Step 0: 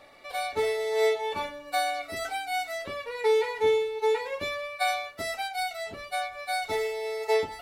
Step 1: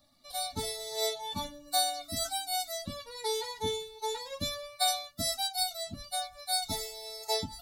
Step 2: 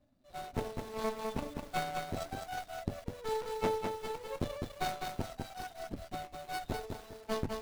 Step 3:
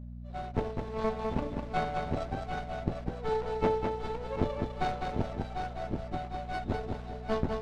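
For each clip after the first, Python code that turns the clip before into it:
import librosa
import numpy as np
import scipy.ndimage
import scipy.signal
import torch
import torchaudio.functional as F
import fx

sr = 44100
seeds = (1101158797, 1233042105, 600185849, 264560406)

y1 = fx.bin_expand(x, sr, power=1.5)
y1 = fx.curve_eq(y1, sr, hz=(260.0, 400.0, 690.0, 2500.0, 3800.0, 9700.0), db=(0, -22, -10, -21, 0, 3))
y1 = y1 * librosa.db_to_amplitude(8.5)
y2 = scipy.signal.medfilt(y1, 41)
y2 = fx.cheby_harmonics(y2, sr, harmonics=(4,), levels_db=(-7,), full_scale_db=-24.0)
y2 = fx.echo_crushed(y2, sr, ms=204, feedback_pct=35, bits=9, wet_db=-4.0)
y2 = y2 * librosa.db_to_amplitude(1.0)
y3 = fx.echo_feedback(y2, sr, ms=748, feedback_pct=44, wet_db=-8.5)
y3 = fx.dmg_buzz(y3, sr, base_hz=60.0, harmonics=4, level_db=-48.0, tilt_db=-5, odd_only=False)
y3 = fx.spacing_loss(y3, sr, db_at_10k=22)
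y3 = y3 * librosa.db_to_amplitude(5.5)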